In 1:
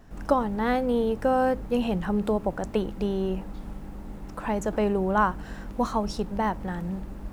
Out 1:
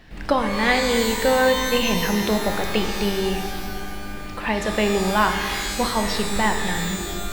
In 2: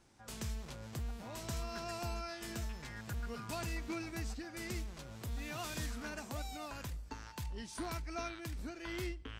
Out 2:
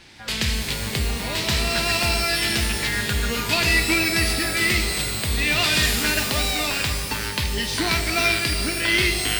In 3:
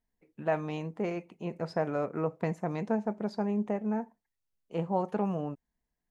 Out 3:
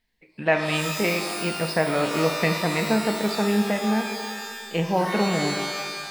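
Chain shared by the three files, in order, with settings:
flat-topped bell 2,900 Hz +12 dB
reverb with rising layers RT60 1.7 s, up +12 semitones, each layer −2 dB, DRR 5.5 dB
normalise the peak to −6 dBFS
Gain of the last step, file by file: +2.0, +14.5, +6.5 decibels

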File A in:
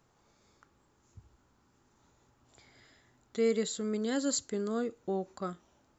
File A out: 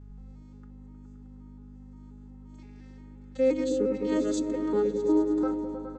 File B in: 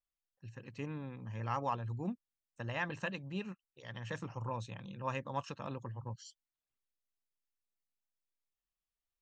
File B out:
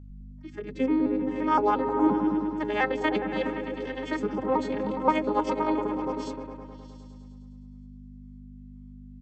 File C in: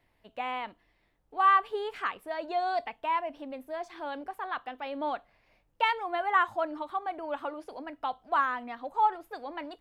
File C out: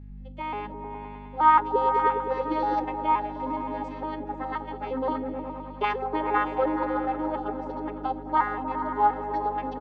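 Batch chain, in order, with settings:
vocoder with an arpeggio as carrier major triad, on G#3, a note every 175 ms
comb filter 2.3 ms, depth 65%
mains hum 50 Hz, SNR 14 dB
on a send: echo whose low-pass opens from repeat to repeat 104 ms, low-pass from 200 Hz, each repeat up 1 octave, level 0 dB
on the sum: loudness normalisation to −27 LKFS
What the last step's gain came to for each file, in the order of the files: +5.0, +13.0, +1.5 decibels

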